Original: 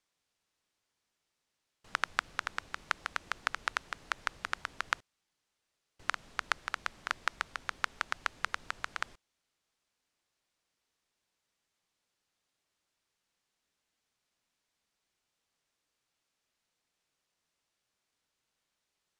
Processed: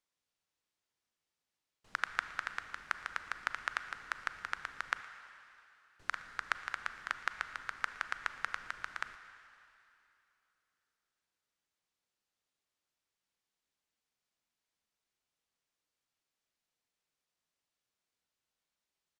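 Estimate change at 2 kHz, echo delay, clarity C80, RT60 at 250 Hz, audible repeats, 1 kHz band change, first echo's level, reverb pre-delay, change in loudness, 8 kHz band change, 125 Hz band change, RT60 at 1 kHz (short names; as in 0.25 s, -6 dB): -1.5 dB, 0.116 s, 11.0 dB, 2.7 s, 1, -3.5 dB, -21.0 dB, 31 ms, -2.5 dB, -6.5 dB, -6.5 dB, 2.9 s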